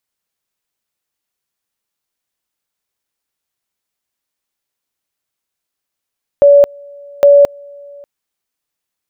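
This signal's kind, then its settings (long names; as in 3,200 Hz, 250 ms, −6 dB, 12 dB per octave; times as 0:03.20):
tone at two levels in turn 570 Hz −2.5 dBFS, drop 29 dB, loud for 0.22 s, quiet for 0.59 s, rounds 2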